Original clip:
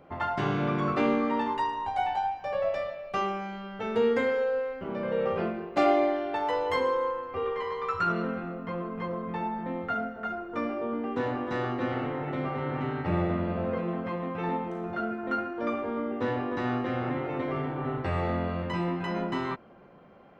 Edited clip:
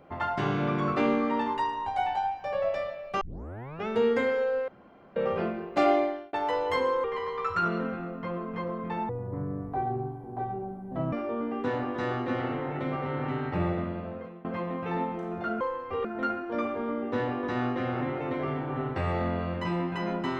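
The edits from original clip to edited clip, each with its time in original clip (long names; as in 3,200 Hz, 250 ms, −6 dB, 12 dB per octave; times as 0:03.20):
0:03.21: tape start 0.66 s
0:04.68–0:05.16: fill with room tone
0:05.95–0:06.33: fade out
0:07.04–0:07.48: move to 0:15.13
0:09.53–0:10.65: play speed 55%
0:13.05–0:13.97: fade out, to −20.5 dB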